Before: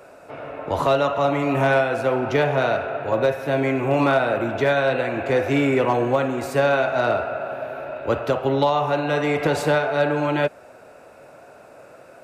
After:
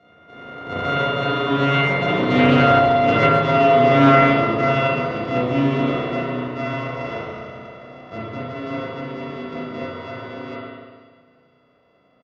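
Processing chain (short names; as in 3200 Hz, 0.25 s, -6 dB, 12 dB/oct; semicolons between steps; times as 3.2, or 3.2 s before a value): sample sorter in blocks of 64 samples; Doppler pass-by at 3.04, 7 m/s, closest 9 m; LPF 4700 Hz 24 dB/oct; high shelf 3200 Hz -9.5 dB; notch comb 820 Hz; speakerphone echo 0.14 s, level -11 dB; spring tank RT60 1.6 s, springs 32/36 ms, chirp 35 ms, DRR -8.5 dB; Doppler distortion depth 0.12 ms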